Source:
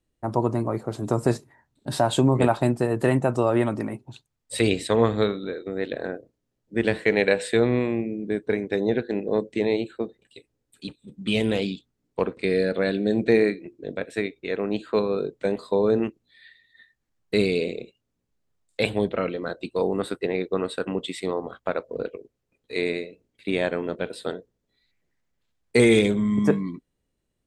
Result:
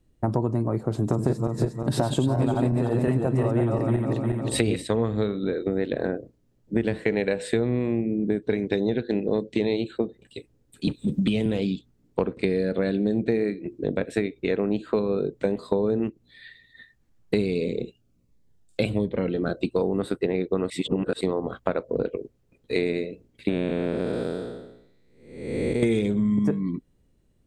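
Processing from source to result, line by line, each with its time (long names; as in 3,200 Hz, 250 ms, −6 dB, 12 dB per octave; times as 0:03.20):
0:00.94–0:04.82: feedback delay that plays each chunk backwards 178 ms, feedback 53%, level −1.5 dB
0:08.42–0:09.98: parametric band 3,800 Hz +8.5 dB 1.3 octaves
0:10.87–0:11.46: multiband upward and downward compressor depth 70%
0:17.54–0:19.62: phaser whose notches keep moving one way falling 1.4 Hz
0:20.70–0:21.21: reverse
0:23.49–0:25.83: spectrum smeared in time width 495 ms
whole clip: low-shelf EQ 430 Hz +10.5 dB; downward compressor 6 to 1, threshold −25 dBFS; level +4 dB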